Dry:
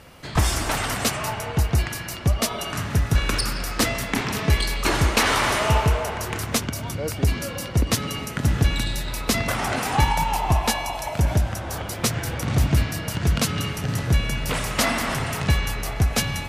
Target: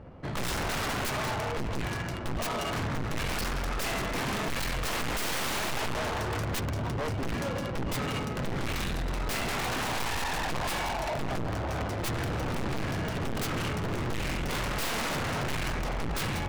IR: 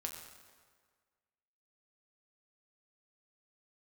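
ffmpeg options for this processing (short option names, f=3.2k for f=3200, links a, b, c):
-af "highshelf=f=4.6k:g=9,adynamicsmooth=sensitivity=2.5:basefreq=650,aeval=exprs='(tanh(14.1*val(0)+0.35)-tanh(0.35))/14.1':c=same,aeval=exprs='0.0316*(abs(mod(val(0)/0.0316+3,4)-2)-1)':c=same,volume=3.5dB"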